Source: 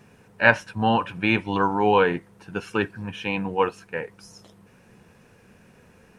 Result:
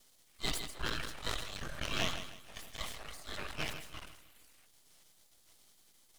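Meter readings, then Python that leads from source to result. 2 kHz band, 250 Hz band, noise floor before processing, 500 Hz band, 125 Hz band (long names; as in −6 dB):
−18.0 dB, −22.0 dB, −55 dBFS, −23.5 dB, −15.0 dB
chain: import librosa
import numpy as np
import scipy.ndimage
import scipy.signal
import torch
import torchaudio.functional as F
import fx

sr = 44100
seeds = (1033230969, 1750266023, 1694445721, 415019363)

p1 = fx.spec_gate(x, sr, threshold_db=-30, keep='weak')
p2 = fx.low_shelf(p1, sr, hz=260.0, db=11.5)
p3 = fx.sample_hold(p2, sr, seeds[0], rate_hz=1400.0, jitter_pct=0)
p4 = p2 + (p3 * 10.0 ** (-11.5 / 20.0))
p5 = np.maximum(p4, 0.0)
p6 = p5 + fx.echo_feedback(p5, sr, ms=157, feedback_pct=49, wet_db=-15.0, dry=0)
p7 = fx.sustainer(p6, sr, db_per_s=61.0)
y = p7 * 10.0 ** (9.5 / 20.0)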